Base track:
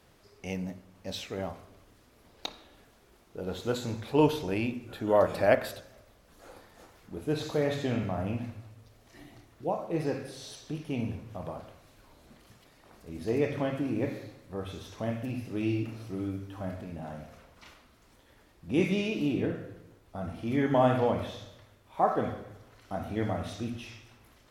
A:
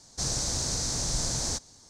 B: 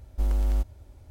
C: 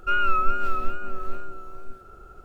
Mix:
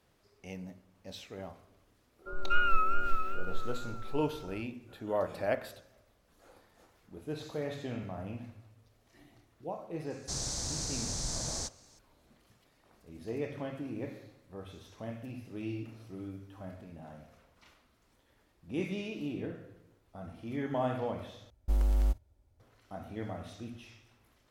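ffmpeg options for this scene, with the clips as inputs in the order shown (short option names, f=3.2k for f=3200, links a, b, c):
-filter_complex "[0:a]volume=-8.5dB[a];[3:a]acrossover=split=220|870[b][c][d];[b]adelay=70[e];[d]adelay=240[f];[e][c][f]amix=inputs=3:normalize=0[g];[2:a]agate=range=-15dB:threshold=-40dB:ratio=16:release=100:detection=peak[h];[a]asplit=2[i][j];[i]atrim=end=21.504[k];[h]atrim=end=1.1,asetpts=PTS-STARTPTS,volume=-3dB[l];[j]atrim=start=22.596[m];[g]atrim=end=2.44,asetpts=PTS-STARTPTS,volume=-4.5dB,afade=t=in:d=0.004:c=hsin,afade=t=out:st=2.436:d=0.004:c=hsin,adelay=2190[n];[1:a]atrim=end=1.89,asetpts=PTS-STARTPTS,volume=-6.5dB,afade=t=in:d=0.004:c=hsin,afade=t=out:st=1.886:d=0.004:c=hsin,adelay=445410S[o];[k][l]acrossfade=d=0.004:c1=hsin:c2=hsin[p];[p][m]acrossfade=d=0.004:c1=hsin:c2=hsin[q];[q][n][o]amix=inputs=3:normalize=0"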